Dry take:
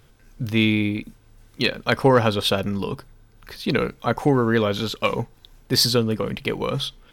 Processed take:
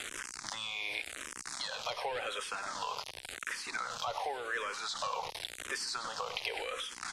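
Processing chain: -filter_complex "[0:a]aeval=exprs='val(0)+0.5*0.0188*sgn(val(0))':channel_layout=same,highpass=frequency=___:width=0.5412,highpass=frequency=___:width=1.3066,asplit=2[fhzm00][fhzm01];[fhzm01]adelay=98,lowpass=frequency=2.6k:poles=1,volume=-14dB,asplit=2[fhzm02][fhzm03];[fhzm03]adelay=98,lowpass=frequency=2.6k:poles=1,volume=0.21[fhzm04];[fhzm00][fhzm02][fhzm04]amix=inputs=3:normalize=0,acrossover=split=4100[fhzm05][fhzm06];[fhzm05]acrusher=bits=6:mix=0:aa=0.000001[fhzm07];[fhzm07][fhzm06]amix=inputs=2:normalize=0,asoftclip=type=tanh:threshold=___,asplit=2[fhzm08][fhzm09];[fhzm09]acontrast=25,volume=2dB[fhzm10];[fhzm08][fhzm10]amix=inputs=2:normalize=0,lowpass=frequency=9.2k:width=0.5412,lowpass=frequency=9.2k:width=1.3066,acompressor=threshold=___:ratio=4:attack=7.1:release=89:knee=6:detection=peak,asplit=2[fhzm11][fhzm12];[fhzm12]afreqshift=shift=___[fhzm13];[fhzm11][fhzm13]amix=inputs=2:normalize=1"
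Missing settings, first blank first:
670, 670, -21.5dB, -35dB, -0.9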